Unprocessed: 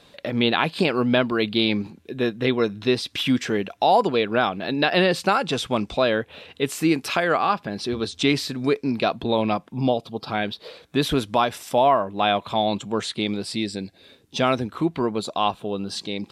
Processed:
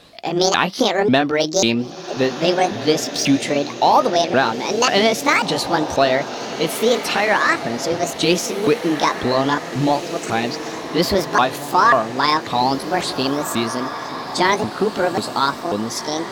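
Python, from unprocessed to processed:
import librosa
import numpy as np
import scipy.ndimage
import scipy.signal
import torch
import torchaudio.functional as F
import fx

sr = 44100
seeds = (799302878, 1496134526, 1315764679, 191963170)

p1 = fx.pitch_ramps(x, sr, semitones=9.5, every_ms=542)
p2 = np.clip(10.0 ** (19.5 / 20.0) * p1, -1.0, 1.0) / 10.0 ** (19.5 / 20.0)
p3 = p1 + F.gain(torch.from_numpy(p2), -11.5).numpy()
p4 = fx.echo_diffused(p3, sr, ms=1867, feedback_pct=54, wet_db=-11.0)
y = F.gain(torch.from_numpy(p4), 3.5).numpy()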